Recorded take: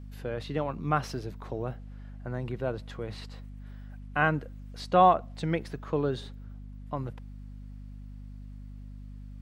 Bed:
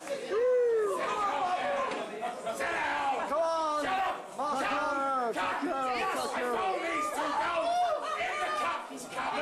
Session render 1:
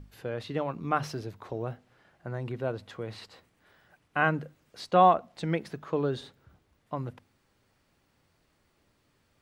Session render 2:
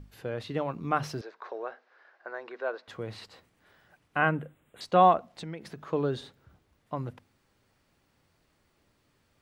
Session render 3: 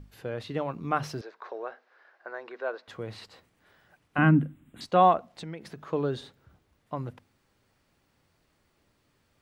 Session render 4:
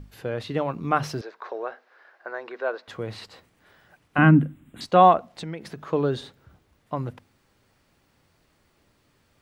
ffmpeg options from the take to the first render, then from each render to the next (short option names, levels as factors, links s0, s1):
-af "bandreject=f=50:t=h:w=6,bandreject=f=100:t=h:w=6,bandreject=f=150:t=h:w=6,bandreject=f=200:t=h:w=6,bandreject=f=250:t=h:w=6"
-filter_complex "[0:a]asettb=1/sr,asplit=3[s0][s1][s2];[s0]atrim=end=1.214[s3];[s1]atrim=start=1.21:end=2.88,asetpts=PTS-STARTPTS,afade=t=in:d=0.004:c=qsin,afade=t=out:st=1.666:d=0.004:c=qsin,highpass=f=410:w=0.5412,highpass=f=410:w=1.3066,equalizer=f=1100:t=q:w=4:g=4,equalizer=f=1600:t=q:w=4:g=8,equalizer=f=3100:t=q:w=4:g=-5,lowpass=f=5300:w=0.5412,lowpass=f=5300:w=1.3066[s4];[s2]atrim=start=2.876[s5];[s3][s4]acrossfade=d=0.004:c1=hsin:c2=qsin[s6];[s6][s5]acrossfade=d=0.004:c1=qsin:c2=hsin,asettb=1/sr,asplit=3[s7][s8][s9];[s7]atrim=end=4.184[s10];[s8]atrim=start=4.18:end=4.81,asetpts=PTS-STARTPTS,afade=t=in:d=0.004:c=qsin,afade=t=out:st=0.626:d=0.004:c=qsin,asuperstop=centerf=5200:order=8:qfactor=1.4[s11];[s9]atrim=start=4.806[s12];[s10][s11]acrossfade=d=0.004:c1=hsin:c2=qsin[s13];[s13][s12]acrossfade=d=0.004:c1=qsin:c2=hsin,asettb=1/sr,asplit=3[s14][s15][s16];[s14]atrim=end=5.334[s17];[s15]atrim=start=5.33:end=5.86,asetpts=PTS-STARTPTS,afade=t=in:d=0.004:c=qsin,afade=t=out:st=0.526:d=0.004:c=qsin,acompressor=threshold=0.0158:ratio=4:attack=3.2:release=140:knee=1:detection=peak[s18];[s16]atrim=start=5.856[s19];[s17][s18]acrossfade=d=0.004:c1=hsin:c2=qsin[s20];[s20][s19]acrossfade=d=0.004:c1=qsin:c2=hsin"
-filter_complex "[0:a]asettb=1/sr,asplit=3[s0][s1][s2];[s0]atrim=end=4.184[s3];[s1]atrim=start=4.18:end=4.86,asetpts=PTS-STARTPTS,afade=t=in:d=0.004:c=qsin,afade=t=out:st=0.676:d=0.004:c=qsin,lowshelf=f=360:t=q:w=3:g=9[s4];[s2]atrim=start=4.856[s5];[s3][s4]acrossfade=d=0.004:c1=hsin:c2=qsin[s6];[s6][s5]acrossfade=d=0.004:c1=qsin:c2=hsin"
-af "volume=1.78"